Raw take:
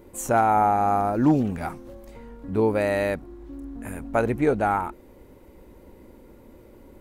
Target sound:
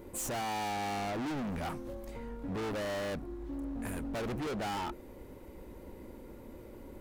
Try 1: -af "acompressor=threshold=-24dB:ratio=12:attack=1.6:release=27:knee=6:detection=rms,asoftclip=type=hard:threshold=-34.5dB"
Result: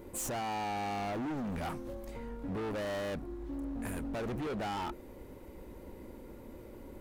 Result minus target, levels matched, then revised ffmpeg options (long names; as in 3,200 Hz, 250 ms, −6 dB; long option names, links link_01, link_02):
downward compressor: peak gain reduction +12 dB
-af "asoftclip=type=hard:threshold=-34.5dB"